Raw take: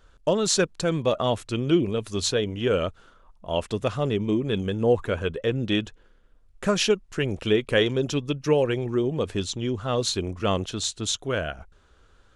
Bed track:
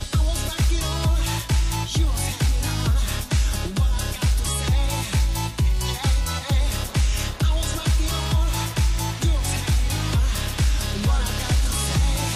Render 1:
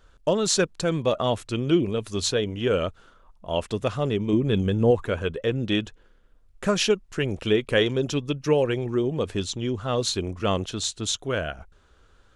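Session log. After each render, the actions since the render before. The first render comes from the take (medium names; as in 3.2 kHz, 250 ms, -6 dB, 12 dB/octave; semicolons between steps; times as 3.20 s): 4.33–4.91 s: bass shelf 240 Hz +7 dB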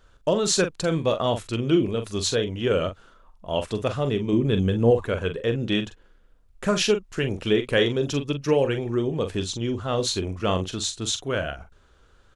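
doubling 43 ms -9 dB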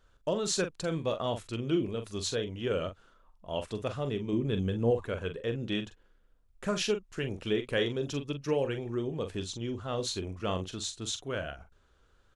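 trim -8.5 dB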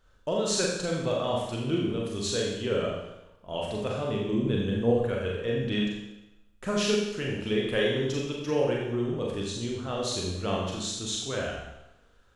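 Schroeder reverb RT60 0.91 s, combs from 30 ms, DRR -2 dB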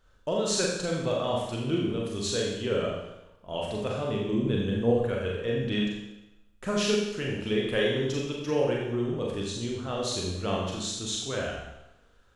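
no audible change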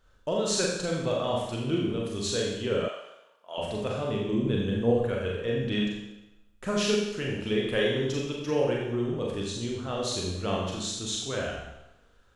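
2.88–3.58 s: high-pass 690 Hz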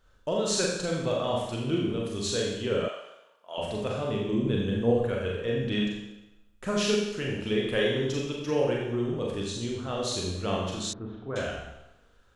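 10.93–11.36 s: low-pass 1.5 kHz 24 dB/octave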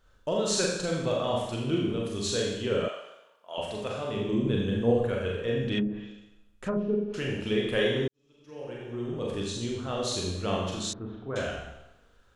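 3.61–4.17 s: bass shelf 390 Hz -6.5 dB; 5.78–7.14 s: low-pass that closes with the level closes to 480 Hz, closed at -23.5 dBFS; 8.08–9.34 s: fade in quadratic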